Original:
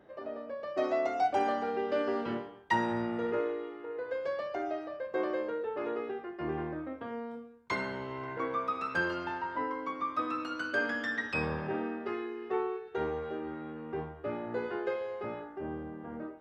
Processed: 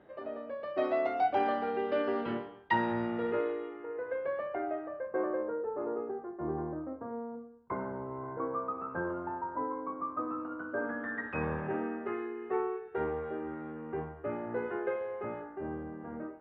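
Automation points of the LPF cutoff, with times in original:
LPF 24 dB/oct
3.48 s 3800 Hz
3.9 s 2300 Hz
4.52 s 2300 Hz
5.81 s 1200 Hz
10.75 s 1200 Hz
11.5 s 2300 Hz

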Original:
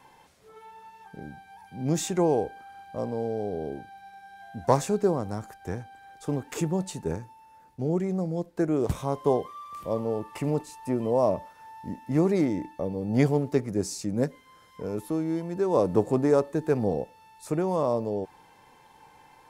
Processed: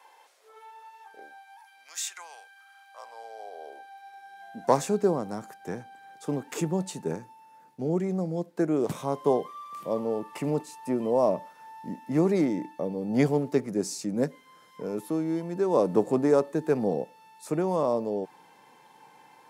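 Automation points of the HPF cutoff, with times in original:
HPF 24 dB/oct
1.23 s 460 Hz
1.87 s 1300 Hz
2.52 s 1300 Hz
3.73 s 590 Hz
4.82 s 150 Hz

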